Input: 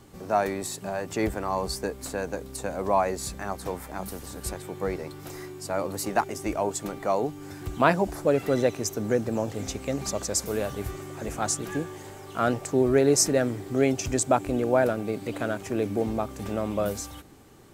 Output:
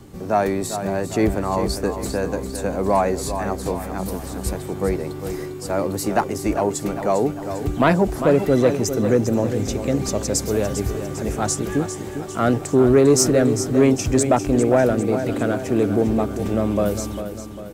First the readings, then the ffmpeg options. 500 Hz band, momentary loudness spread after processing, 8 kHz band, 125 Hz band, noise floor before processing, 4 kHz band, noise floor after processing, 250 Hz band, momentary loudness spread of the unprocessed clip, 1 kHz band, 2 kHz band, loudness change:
+6.5 dB, 10 LU, +4.0 dB, +9.5 dB, -43 dBFS, +4.0 dB, -32 dBFS, +9.0 dB, 13 LU, +4.5 dB, +3.5 dB, +6.5 dB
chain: -filter_complex "[0:a]acrossover=split=470|1400[s0][s1][s2];[s0]acontrast=52[s3];[s3][s1][s2]amix=inputs=3:normalize=0,aecho=1:1:400|800|1200|1600|2000:0.316|0.155|0.0759|0.0372|0.0182,acontrast=73,volume=0.708"

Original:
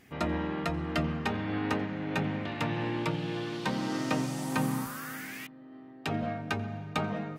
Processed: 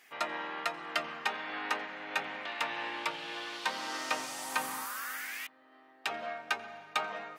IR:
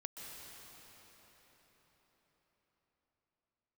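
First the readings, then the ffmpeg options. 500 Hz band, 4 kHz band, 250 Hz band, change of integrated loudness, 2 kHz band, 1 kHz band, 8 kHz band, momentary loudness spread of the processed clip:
-6.5 dB, +2.5 dB, -17.5 dB, -3.0 dB, +2.0 dB, 0.0 dB, +2.5 dB, 5 LU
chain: -af "highpass=860,volume=1.33"

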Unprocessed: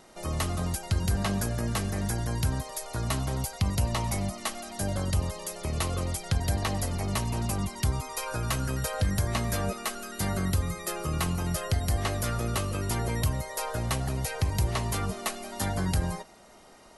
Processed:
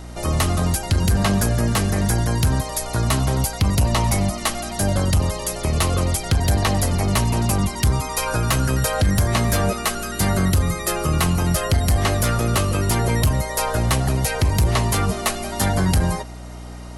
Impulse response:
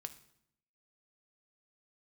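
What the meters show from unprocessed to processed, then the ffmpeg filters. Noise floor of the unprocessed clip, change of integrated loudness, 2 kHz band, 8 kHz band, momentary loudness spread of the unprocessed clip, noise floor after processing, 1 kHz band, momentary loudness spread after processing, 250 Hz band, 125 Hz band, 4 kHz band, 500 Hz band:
-53 dBFS, +10.0 dB, +10.0 dB, +10.0 dB, 5 LU, -34 dBFS, +10.0 dB, 5 LU, +10.0 dB, +9.5 dB, +9.5 dB, +10.0 dB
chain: -af "aeval=exprs='0.188*sin(PI/2*1.58*val(0)/0.188)':c=same,aeval=exprs='val(0)+0.0141*(sin(2*PI*60*n/s)+sin(2*PI*2*60*n/s)/2+sin(2*PI*3*60*n/s)/3+sin(2*PI*4*60*n/s)/4+sin(2*PI*5*60*n/s)/5)':c=same,volume=1.41"

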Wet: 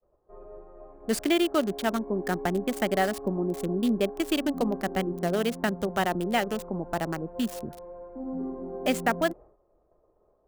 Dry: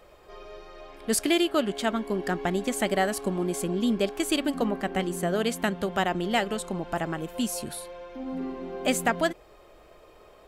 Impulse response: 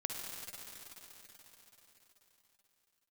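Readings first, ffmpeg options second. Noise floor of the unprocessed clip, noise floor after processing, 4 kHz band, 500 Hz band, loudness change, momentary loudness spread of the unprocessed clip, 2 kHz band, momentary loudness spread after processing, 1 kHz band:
-54 dBFS, -68 dBFS, -3.0 dB, 0.0 dB, -0.5 dB, 13 LU, -1.5 dB, 13 LU, -0.5 dB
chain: -filter_complex "[0:a]agate=range=0.0224:threshold=0.00708:ratio=3:detection=peak,highshelf=f=5700:g=-12,acrossover=split=200|1100[s0][s1][s2];[s2]acrusher=bits=5:mix=0:aa=0.000001[s3];[s0][s1][s3]amix=inputs=3:normalize=0"

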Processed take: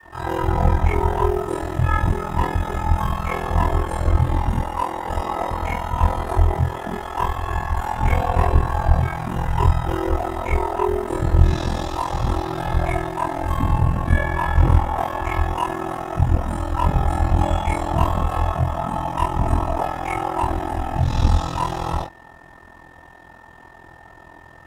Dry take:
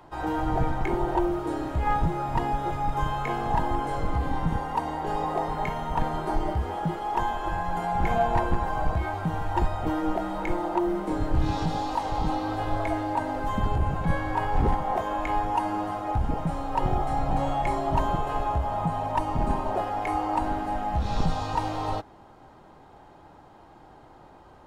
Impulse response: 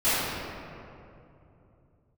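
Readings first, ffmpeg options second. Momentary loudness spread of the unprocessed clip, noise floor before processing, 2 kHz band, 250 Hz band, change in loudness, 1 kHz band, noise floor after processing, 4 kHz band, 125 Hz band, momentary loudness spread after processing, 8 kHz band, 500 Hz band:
3 LU, -51 dBFS, +6.0 dB, +2.5 dB, +6.0 dB, +3.0 dB, -45 dBFS, +5.5 dB, +10.0 dB, 6 LU, +8.5 dB, +4.5 dB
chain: -filter_complex "[0:a]equalizer=f=410:t=o:w=0.35:g=-4.5[s0];[1:a]atrim=start_sample=2205,atrim=end_sample=3528[s1];[s0][s1]afir=irnorm=-1:irlink=0,afreqshift=40,highshelf=f=5600:g=10.5,aeval=exprs='val(0)+0.0112*sin(2*PI*1800*n/s)':c=same,aeval=exprs='val(0)*sin(2*PI*21*n/s)':c=same,bandreject=f=4400:w=8.8,volume=0.531"

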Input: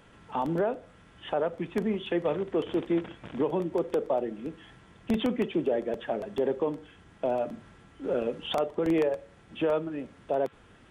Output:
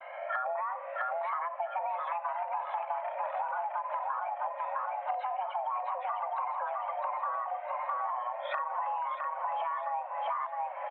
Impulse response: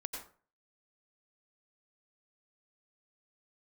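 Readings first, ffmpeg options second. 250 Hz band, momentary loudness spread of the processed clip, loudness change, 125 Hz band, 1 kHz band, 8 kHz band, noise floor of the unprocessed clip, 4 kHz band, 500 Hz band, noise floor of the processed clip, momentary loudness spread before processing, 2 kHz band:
under -40 dB, 2 LU, -4.0 dB, under -40 dB, +7.5 dB, no reading, -57 dBFS, under -10 dB, -11.0 dB, -41 dBFS, 12 LU, +1.5 dB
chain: -filter_complex "[0:a]afftfilt=real='re*pow(10,17/40*sin(2*PI*(1.8*log(max(b,1)*sr/1024/100)/log(2)-(0.76)*(pts-256)/sr)))':imag='im*pow(10,17/40*sin(2*PI*(1.8*log(max(b,1)*sr/1024/100)/log(2)-(0.76)*(pts-256)/sr)))':win_size=1024:overlap=0.75,aemphasis=mode=reproduction:type=bsi,afreqshift=320,tiltshelf=f=650:g=-3.5,alimiter=limit=0.112:level=0:latency=1:release=46,acontrast=26,highpass=f=200:t=q:w=0.5412,highpass=f=200:t=q:w=1.307,lowpass=f=2300:t=q:w=0.5176,lowpass=f=2300:t=q:w=0.7071,lowpass=f=2300:t=q:w=1.932,afreqshift=190,asplit=2[s0][s1];[s1]aecho=0:1:659|1318|1977|2636|3295:0.596|0.25|0.105|0.0441|0.0185[s2];[s0][s2]amix=inputs=2:normalize=0,acompressor=threshold=0.0251:ratio=16,agate=range=0.00355:threshold=0.00316:ratio=16:detection=peak,volume=1.19"

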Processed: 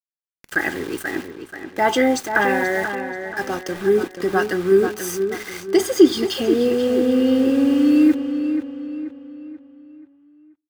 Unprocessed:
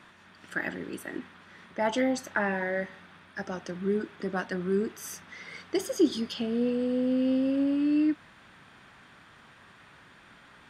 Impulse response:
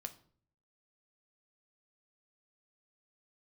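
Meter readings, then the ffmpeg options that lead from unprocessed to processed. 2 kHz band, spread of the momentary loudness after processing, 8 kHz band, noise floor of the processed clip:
+11.0 dB, 15 LU, +11.0 dB, -82 dBFS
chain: -filter_complex "[0:a]aecho=1:1:2.5:0.52,agate=range=0.0224:threshold=0.00355:ratio=3:detection=peak,aeval=exprs='val(0)*gte(abs(val(0)),0.00794)':c=same,asplit=2[s0][s1];[s1]adelay=483,lowpass=f=3600:p=1,volume=0.398,asplit=2[s2][s3];[s3]adelay=483,lowpass=f=3600:p=1,volume=0.44,asplit=2[s4][s5];[s5]adelay=483,lowpass=f=3600:p=1,volume=0.44,asplit=2[s6][s7];[s7]adelay=483,lowpass=f=3600:p=1,volume=0.44,asplit=2[s8][s9];[s9]adelay=483,lowpass=f=3600:p=1,volume=0.44[s10];[s0][s2][s4][s6][s8][s10]amix=inputs=6:normalize=0,asplit=2[s11][s12];[1:a]atrim=start_sample=2205,highshelf=f=8500:g=11.5[s13];[s12][s13]afir=irnorm=-1:irlink=0,volume=0.299[s14];[s11][s14]amix=inputs=2:normalize=0,volume=2.51"

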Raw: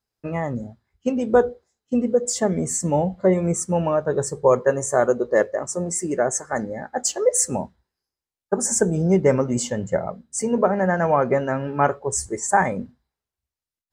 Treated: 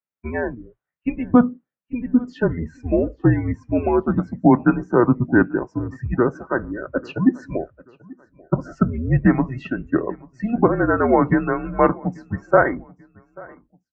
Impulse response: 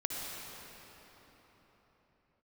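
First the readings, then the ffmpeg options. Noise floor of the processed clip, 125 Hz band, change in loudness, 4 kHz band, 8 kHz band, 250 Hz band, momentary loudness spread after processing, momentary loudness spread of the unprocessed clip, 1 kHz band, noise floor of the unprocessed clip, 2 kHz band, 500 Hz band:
under -85 dBFS, +4.0 dB, +1.0 dB, under -10 dB, under -35 dB, +6.0 dB, 13 LU, 9 LU, 0.0 dB, under -85 dBFS, +3.0 dB, -2.0 dB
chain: -filter_complex "[0:a]crystalizer=i=4:c=0,afftdn=nr=15:nf=-38,highpass=f=240:t=q:w=0.5412,highpass=f=240:t=q:w=1.307,lowpass=f=2700:t=q:w=0.5176,lowpass=f=2700:t=q:w=0.7071,lowpass=f=2700:t=q:w=1.932,afreqshift=-240,highpass=53,asplit=2[s0][s1];[s1]aecho=0:1:838|1676:0.0631|0.024[s2];[s0][s2]amix=inputs=2:normalize=0,volume=1.33"

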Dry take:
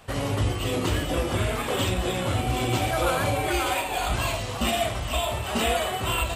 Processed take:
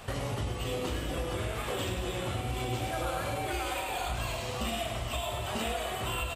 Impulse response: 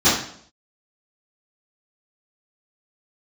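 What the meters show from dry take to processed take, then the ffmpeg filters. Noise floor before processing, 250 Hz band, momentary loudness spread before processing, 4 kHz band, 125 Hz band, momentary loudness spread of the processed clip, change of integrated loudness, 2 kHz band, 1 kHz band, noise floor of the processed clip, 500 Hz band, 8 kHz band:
-31 dBFS, -8.5 dB, 3 LU, -7.5 dB, -8.0 dB, 1 LU, -8.0 dB, -8.0 dB, -7.5 dB, -36 dBFS, -7.5 dB, -8.0 dB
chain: -filter_complex "[0:a]aecho=1:1:102|204|306|408|510:0.447|0.188|0.0788|0.0331|0.0139,asplit=2[s0][s1];[1:a]atrim=start_sample=2205[s2];[s1][s2]afir=irnorm=-1:irlink=0,volume=0.0224[s3];[s0][s3]amix=inputs=2:normalize=0,acompressor=threshold=0.01:ratio=3,volume=1.68"

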